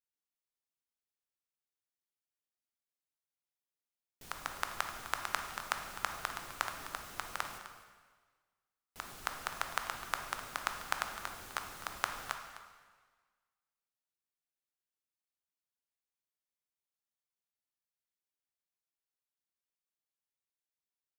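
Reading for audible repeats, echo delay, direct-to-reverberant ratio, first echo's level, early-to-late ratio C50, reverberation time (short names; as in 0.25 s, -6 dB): 1, 0.255 s, 4.5 dB, -15.0 dB, 6.0 dB, 1.5 s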